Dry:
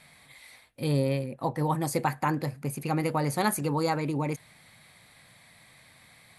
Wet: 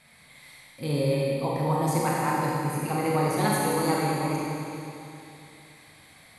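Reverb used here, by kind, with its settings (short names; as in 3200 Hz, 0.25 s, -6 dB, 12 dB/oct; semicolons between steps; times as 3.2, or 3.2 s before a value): Schroeder reverb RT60 2.9 s, combs from 31 ms, DRR -5 dB; gain -3 dB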